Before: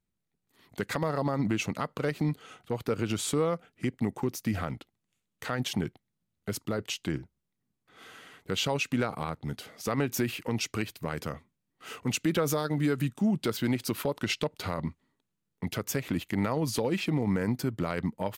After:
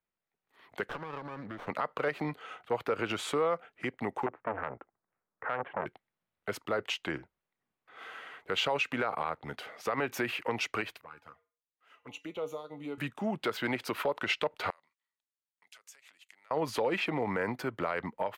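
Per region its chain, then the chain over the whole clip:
0.89–1.67 compressor, threshold -30 dBFS + fixed phaser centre 2600 Hz, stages 6 + running maximum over 17 samples
4.26–5.86 inverse Chebyshev low-pass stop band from 5200 Hz, stop band 60 dB + core saturation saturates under 930 Hz
11.01–12.98 resonator 95 Hz, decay 0.38 s, harmonics odd, mix 70% + envelope flanger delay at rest 7.2 ms, full sweep at -35 dBFS + upward expander, over -56 dBFS
14.7–16.51 compressor, threshold -35 dBFS + band-pass 7600 Hz, Q 1.8
whole clip: three-band isolator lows -18 dB, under 460 Hz, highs -17 dB, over 2900 Hz; limiter -26.5 dBFS; AGC gain up to 4 dB; gain +2.5 dB

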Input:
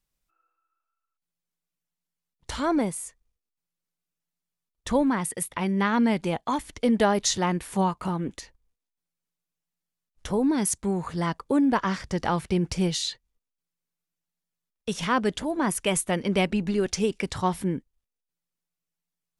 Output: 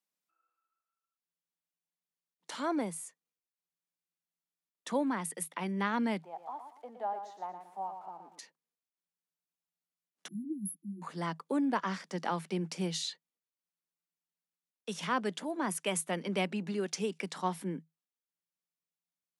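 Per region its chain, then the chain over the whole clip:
6.22–8.39 switching spikes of -26 dBFS + band-pass 770 Hz, Q 5.1 + feedback echo 0.116 s, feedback 31%, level -8 dB
10.28–11.02 brick-wall FIR band-stop 350–10000 Hz + ensemble effect
whole clip: Chebyshev high-pass 160 Hz, order 8; low shelf 330 Hz -4 dB; gain -6.5 dB

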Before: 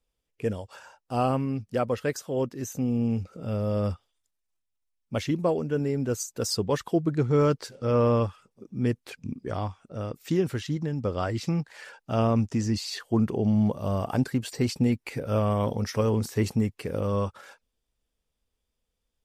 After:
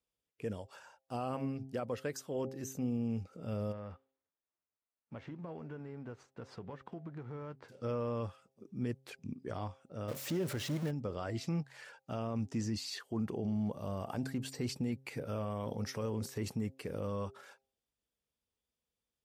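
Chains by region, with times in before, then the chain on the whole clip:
3.71–7.68 spectral whitening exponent 0.6 + LPF 1500 Hz + compressor 12:1, threshold -33 dBFS
10.08–10.91 zero-crossing step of -32 dBFS + bell 570 Hz +8.5 dB 0.24 oct
whole clip: HPF 85 Hz 12 dB/oct; de-hum 133.1 Hz, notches 6; limiter -19.5 dBFS; gain -7.5 dB

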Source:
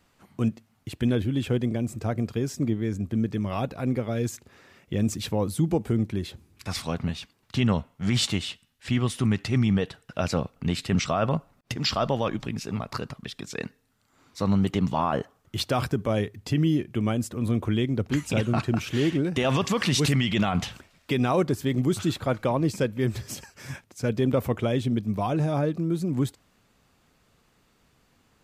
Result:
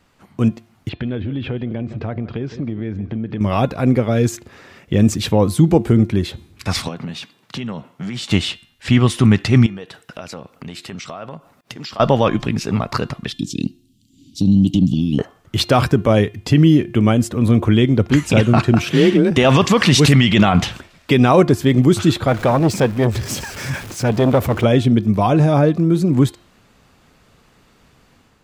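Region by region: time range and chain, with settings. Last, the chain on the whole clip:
0.89–3.41 LPF 3700 Hz 24 dB/oct + echo 0.16 s -20 dB + compressor 4:1, threshold -33 dBFS
6.88–8.31 HPF 130 Hz 24 dB/oct + compressor 5:1, threshold -36 dBFS
9.66–12 HPF 240 Hz 6 dB/oct + high shelf 9000 Hz +6.5 dB + compressor 4:1, threshold -42 dBFS
13.32–15.19 Chebyshev band-stop 300–3000 Hz, order 4 + bell 410 Hz +8 dB 2.7 oct + compressor 2:1, threshold -24 dBFS
18.82–19.31 notch 6700 Hz, Q 13 + frequency shift +32 Hz
22.27–24.64 zero-crossing step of -38 dBFS + core saturation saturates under 410 Hz
whole clip: high shelf 7200 Hz -6 dB; de-hum 349.4 Hz, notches 12; AGC gain up to 5 dB; gain +6.5 dB

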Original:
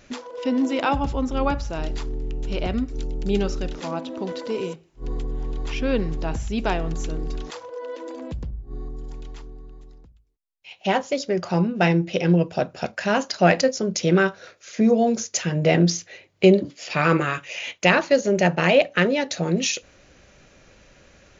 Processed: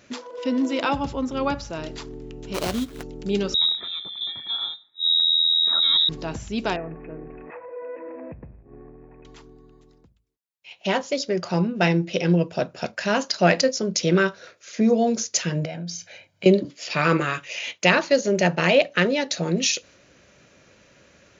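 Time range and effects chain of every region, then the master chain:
2.54–3.03 bell 4800 Hz +9 dB 2 oct + sample-rate reducer 3600 Hz, jitter 20%
3.54–6.09 Butterworth band-stop 870 Hz, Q 0.55 + comb 2 ms, depth 34% + inverted band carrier 3800 Hz
6.76–9.25 G.711 law mismatch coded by mu + rippled Chebyshev low-pass 2600 Hz, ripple 6 dB
15.65–16.46 HPF 41 Hz + comb 1.3 ms, depth 74% + compressor 3:1, threshold -34 dBFS
whole clip: HPF 97 Hz; dynamic EQ 4700 Hz, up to +5 dB, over -43 dBFS, Q 1.2; notch 780 Hz, Q 14; gain -1 dB

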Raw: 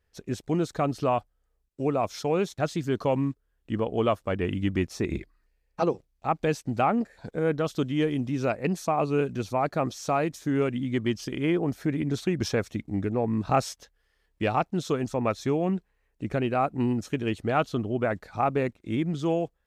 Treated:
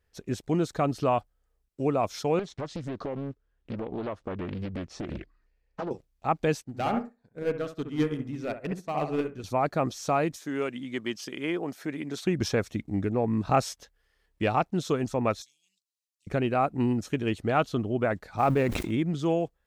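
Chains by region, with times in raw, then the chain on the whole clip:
2.39–5.91 compressor, threshold -29 dBFS + air absorption 90 m + Doppler distortion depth 0.95 ms
6.64–9.44 hard clip -20.5 dBFS + analogue delay 66 ms, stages 1024, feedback 38%, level -4 dB + upward expander 2.5:1, over -40 dBFS
10.36–12.25 HPF 180 Hz + low shelf 440 Hz -8 dB
15.42–16.27 inverse Chebyshev high-pass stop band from 1400 Hz, stop band 60 dB + high shelf 9600 Hz -7 dB
18.38–18.91 G.711 law mismatch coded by mu + sustainer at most 42 dB/s
whole clip: dry

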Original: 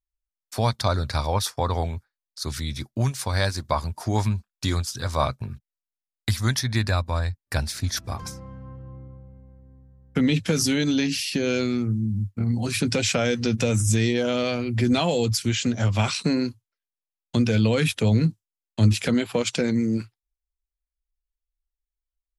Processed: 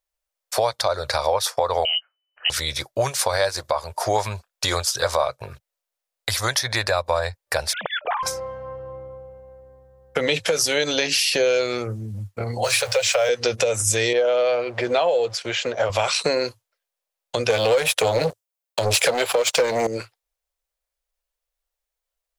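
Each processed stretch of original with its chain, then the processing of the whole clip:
1.85–2.5 air absorption 380 m + inverted band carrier 3000 Hz
7.73–8.23 sine-wave speech + compressor 2.5:1, threshold -35 dBFS
12.64–13.29 zero-crossing step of -35.5 dBFS + elliptic band-stop 120–490 Hz
14.13–15.9 G.711 law mismatch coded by A + HPF 250 Hz 6 dB/oct + tape spacing loss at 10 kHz 20 dB
17.5–19.87 HPF 68 Hz + high shelf 11000 Hz +8.5 dB + sample leveller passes 3
whole clip: resonant low shelf 360 Hz -13.5 dB, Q 3; compressor 10:1, threshold -26 dBFS; maximiser +17 dB; gain -7 dB

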